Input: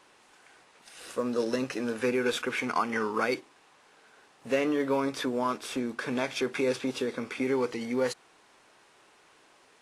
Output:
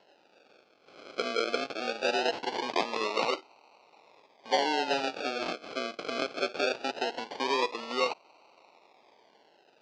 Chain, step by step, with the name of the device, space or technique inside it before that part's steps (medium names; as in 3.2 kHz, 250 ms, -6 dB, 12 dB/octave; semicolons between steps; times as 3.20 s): circuit-bent sampling toy (decimation with a swept rate 37×, swing 60% 0.21 Hz; cabinet simulation 500–5300 Hz, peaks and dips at 880 Hz +4 dB, 1.8 kHz -6 dB, 2.6 kHz +5 dB, 4.6 kHz +5 dB); trim +2 dB